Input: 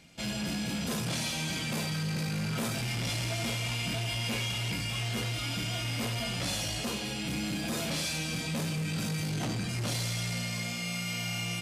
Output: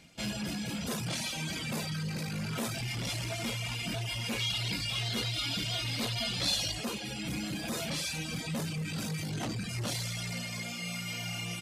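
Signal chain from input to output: reverb removal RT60 0.99 s; 4.39–6.72 bell 4000 Hz +10.5 dB 0.63 oct

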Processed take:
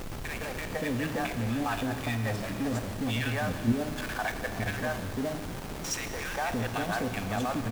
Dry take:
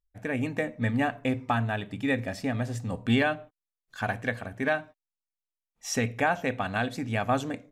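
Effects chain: three bands offset in time highs, mids, lows 0.16/0.57 s, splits 550/1800 Hz; level quantiser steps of 11 dB; added noise pink -48 dBFS; in parallel at -3 dB: Schmitt trigger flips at -44 dBFS; on the sum: Schroeder reverb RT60 3 s, combs from 28 ms, DRR 9 dB

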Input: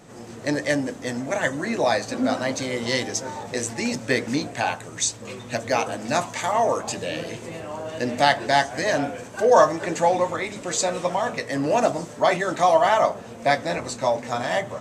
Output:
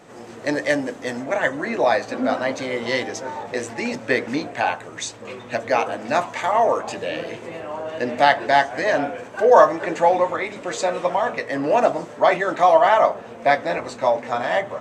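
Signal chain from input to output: tone controls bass -9 dB, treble -7 dB, from 1.23 s treble -13 dB; gain +3.5 dB

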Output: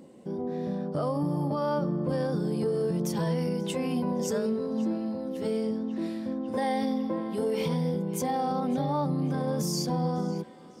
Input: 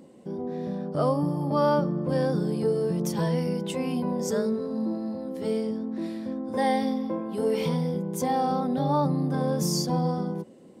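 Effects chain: limiter -20.5 dBFS, peak gain reduction 7.5 dB; narrowing echo 0.551 s, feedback 80%, band-pass 2500 Hz, level -15.5 dB

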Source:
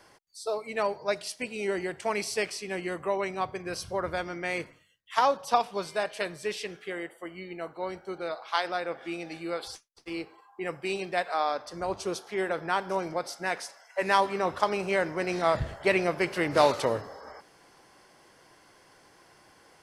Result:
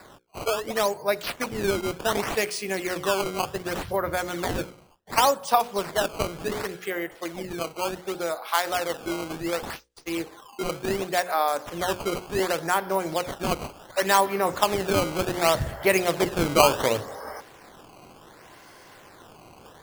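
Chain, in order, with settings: notches 60/120/180/240/300/360/420/480/540 Hz; in parallel at +1 dB: compressor, threshold -39 dBFS, peak gain reduction 21 dB; on the sum: decimation with a swept rate 14×, swing 160% 0.68 Hz; gain +2.5 dB

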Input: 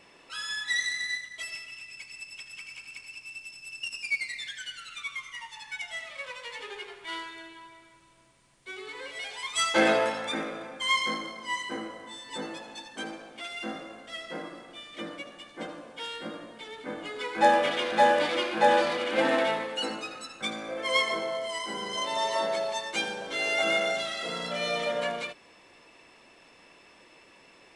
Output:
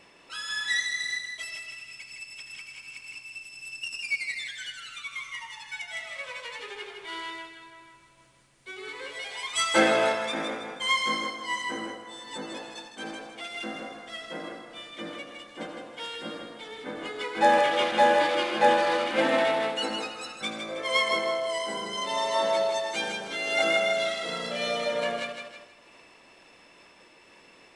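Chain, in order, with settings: thinning echo 0.159 s, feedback 40%, high-pass 160 Hz, level -6 dB; noise-modulated level, depth 55%; gain +2.5 dB

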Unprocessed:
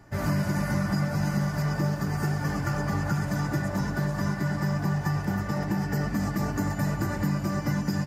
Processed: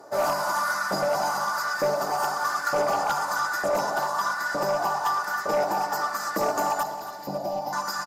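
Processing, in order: LFO high-pass saw up 1.1 Hz 480–1700 Hz; band shelf 2300 Hz -12 dB 1.1 oct; sine folder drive 4 dB, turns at -18 dBFS; 6.83–7.73 EQ curve 200 Hz 0 dB, 430 Hz -6 dB, 790 Hz +1 dB, 1300 Hz -24 dB, 2700 Hz -9 dB, 5000 Hz -7 dB, 8100 Hz -20 dB, 13000 Hz -8 dB; feedback echo 0.275 s, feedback 48%, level -13 dB

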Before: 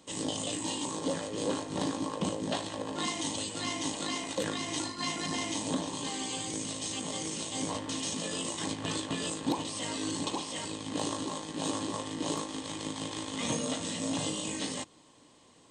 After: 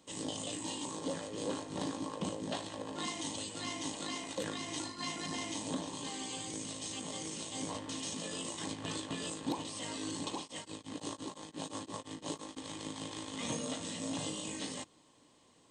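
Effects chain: 10.4–12.57 beating tremolo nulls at 5.8 Hz; gain -5.5 dB

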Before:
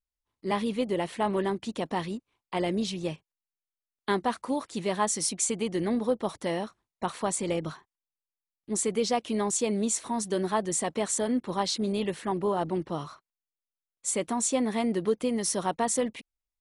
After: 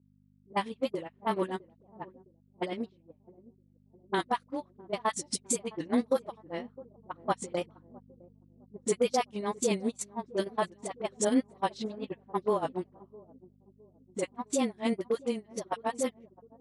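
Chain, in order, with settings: wow and flutter 81 cents; dispersion highs, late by 64 ms, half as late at 590 Hz; gate -25 dBFS, range -35 dB; hum 50 Hz, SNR 25 dB; Bessel high-pass 180 Hz, order 2; limiter -24 dBFS, peak gain reduction 9 dB; darkening echo 0.66 s, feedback 55%, low-pass 910 Hz, level -20 dB; vocal rider within 5 dB 2 s; low-pass opened by the level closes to 410 Hz, open at -33.5 dBFS; gain +6 dB

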